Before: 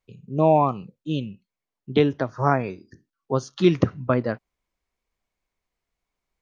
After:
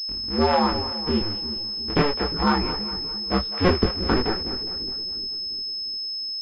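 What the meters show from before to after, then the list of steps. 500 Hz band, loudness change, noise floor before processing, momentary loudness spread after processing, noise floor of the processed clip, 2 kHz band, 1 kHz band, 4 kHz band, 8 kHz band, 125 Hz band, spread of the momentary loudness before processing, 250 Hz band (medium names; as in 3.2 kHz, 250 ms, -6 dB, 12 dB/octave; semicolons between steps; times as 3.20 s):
-2.5 dB, -0.5 dB, under -85 dBFS, 6 LU, -30 dBFS, +4.0 dB, +0.5 dB, +17.0 dB, no reading, -3.0 dB, 14 LU, 0.0 dB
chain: cycle switcher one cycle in 2, inverted; peaking EQ 630 Hz -11.5 dB 0.36 oct; in parallel at +0.5 dB: compression, threshold -28 dBFS, peak gain reduction 15 dB; on the sum: chorus voices 4, 1.3 Hz, delay 21 ms, depth 3 ms; on a send: two-band feedback delay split 460 Hz, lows 351 ms, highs 206 ms, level -12.5 dB; on the sum: class-D stage that switches slowly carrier 5.2 kHz; trim +1.5 dB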